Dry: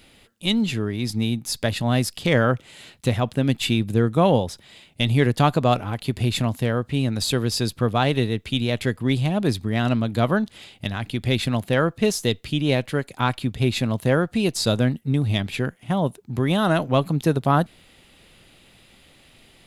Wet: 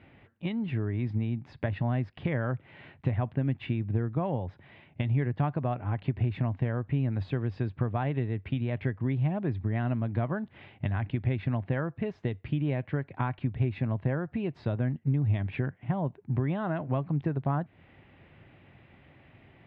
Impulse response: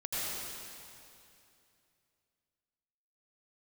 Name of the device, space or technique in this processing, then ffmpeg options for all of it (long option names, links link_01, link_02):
bass amplifier: -af "acompressor=threshold=-27dB:ratio=5,highpass=62,equalizer=frequency=96:width_type=q:width=4:gain=7,equalizer=frequency=140:width_type=q:width=4:gain=4,equalizer=frequency=210:width_type=q:width=4:gain=-3,equalizer=frequency=480:width_type=q:width=4:gain=-5,equalizer=frequency=1300:width_type=q:width=4:gain=-5,lowpass=frequency=2100:width=0.5412,lowpass=frequency=2100:width=1.3066"